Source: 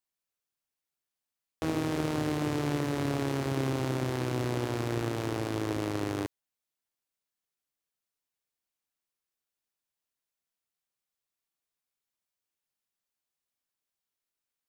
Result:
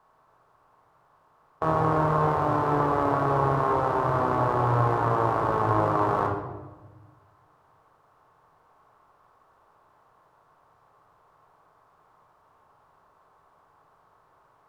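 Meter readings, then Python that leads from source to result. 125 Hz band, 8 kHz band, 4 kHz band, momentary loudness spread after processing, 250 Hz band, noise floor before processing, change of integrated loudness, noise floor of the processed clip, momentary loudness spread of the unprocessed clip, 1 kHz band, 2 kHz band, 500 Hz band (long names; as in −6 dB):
+5.0 dB, below −10 dB, can't be measured, 4 LU, +0.5 dB, below −85 dBFS, +7.5 dB, −63 dBFS, 3 LU, +16.0 dB, +5.0 dB, +8.0 dB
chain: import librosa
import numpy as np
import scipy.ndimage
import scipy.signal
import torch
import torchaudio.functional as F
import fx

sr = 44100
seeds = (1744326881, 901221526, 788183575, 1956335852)

y = fx.bin_compress(x, sr, power=0.6)
y = fx.curve_eq(y, sr, hz=(120.0, 240.0, 1100.0, 2200.0, 6700.0), db=(0, -9, 14, -10, -16))
y = fx.rider(y, sr, range_db=10, speed_s=0.5)
y = fx.room_shoebox(y, sr, seeds[0], volume_m3=650.0, walls='mixed', distance_m=1.5)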